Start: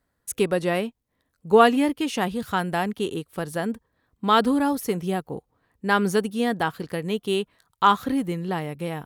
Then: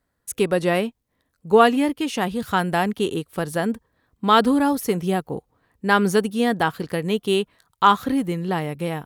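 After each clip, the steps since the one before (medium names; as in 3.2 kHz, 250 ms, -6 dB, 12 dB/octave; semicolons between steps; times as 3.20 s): level rider gain up to 4 dB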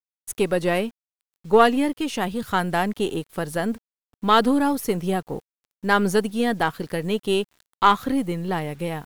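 partial rectifier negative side -3 dB; bit crusher 9-bit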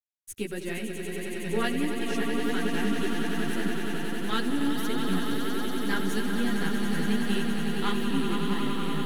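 high-order bell 770 Hz -11 dB; echo with a slow build-up 93 ms, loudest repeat 8, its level -7.5 dB; chorus voices 2, 1.5 Hz, delay 11 ms, depth 3 ms; trim -5.5 dB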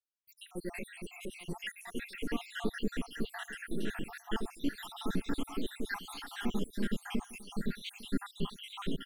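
random holes in the spectrogram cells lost 73%; delay 854 ms -19.5 dB; trim -3.5 dB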